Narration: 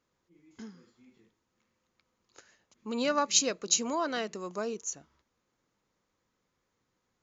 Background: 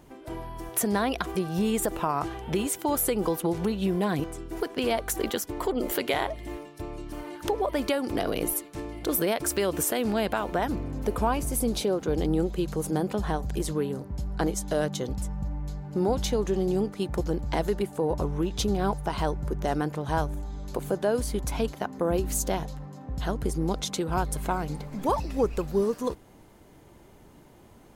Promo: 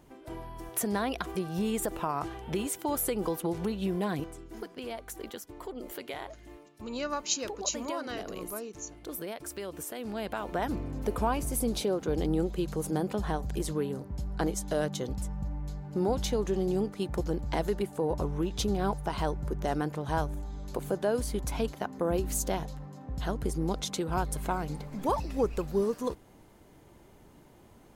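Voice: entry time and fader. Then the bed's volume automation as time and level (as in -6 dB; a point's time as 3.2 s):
3.95 s, -5.5 dB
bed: 4.1 s -4.5 dB
4.78 s -12.5 dB
9.9 s -12.5 dB
10.69 s -3 dB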